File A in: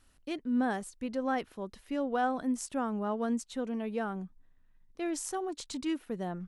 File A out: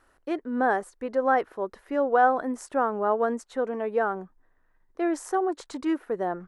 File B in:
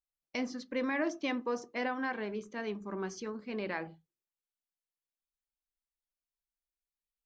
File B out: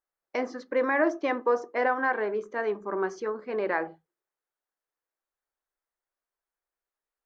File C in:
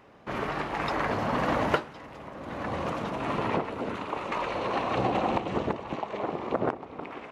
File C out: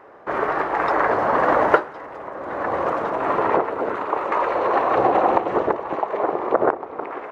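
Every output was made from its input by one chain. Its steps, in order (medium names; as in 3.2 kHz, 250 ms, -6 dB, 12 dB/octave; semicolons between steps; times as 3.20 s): high-order bell 790 Hz +14 dB 2.9 oct; trim -3.5 dB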